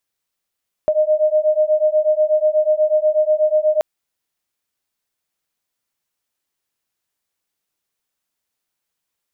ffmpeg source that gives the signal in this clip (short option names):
-f lavfi -i "aevalsrc='0.158*(sin(2*PI*611*t)+sin(2*PI*619.2*t))':d=2.93:s=44100"